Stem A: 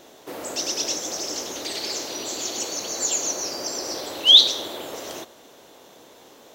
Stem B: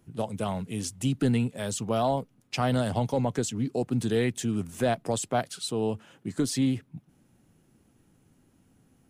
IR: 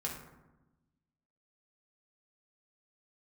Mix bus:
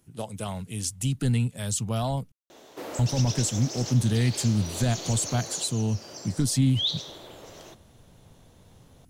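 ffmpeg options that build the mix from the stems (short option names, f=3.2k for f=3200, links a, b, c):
-filter_complex "[0:a]adelay=2500,volume=-2dB,afade=t=out:st=5.34:d=0.38:silence=0.334965[a];[1:a]asubboost=boost=9:cutoff=150,crystalizer=i=3:c=0,volume=-4dB,asplit=3[b][c][d];[b]atrim=end=2.32,asetpts=PTS-STARTPTS,afade=t=out:st=2.316:d=0.004:c=hsin[e];[c]atrim=start=2.32:end=2.99,asetpts=PTS-STARTPTS,volume=0[f];[d]atrim=start=2.99,asetpts=PTS-STARTPTS,afade=t=in:d=0.004:c=hsin[g];[e][f][g]concat=n=3:v=0:a=1,asplit=2[h][i];[i]apad=whole_len=399095[j];[a][j]sidechaincompress=threshold=-27dB:ratio=3:attack=16:release=390[k];[k][h]amix=inputs=2:normalize=0,highshelf=f=12k:g=-9"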